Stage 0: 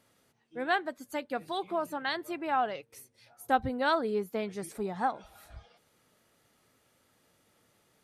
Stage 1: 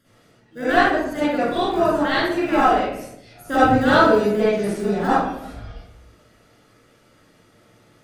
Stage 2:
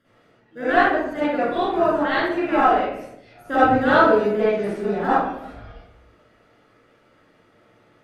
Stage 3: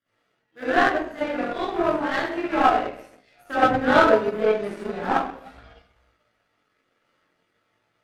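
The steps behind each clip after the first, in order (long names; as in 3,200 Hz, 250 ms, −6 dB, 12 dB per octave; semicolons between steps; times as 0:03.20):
in parallel at −11.5 dB: decimation without filtering 41×; on the sum: convolution reverb RT60 0.75 s, pre-delay 45 ms, DRR −12 dB; level −1 dB
bass and treble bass −6 dB, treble −14 dB
multi-voice chorus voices 2, 0.35 Hz, delay 19 ms, depth 4 ms; power curve on the samples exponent 1.4; one half of a high-frequency compander encoder only; level +4.5 dB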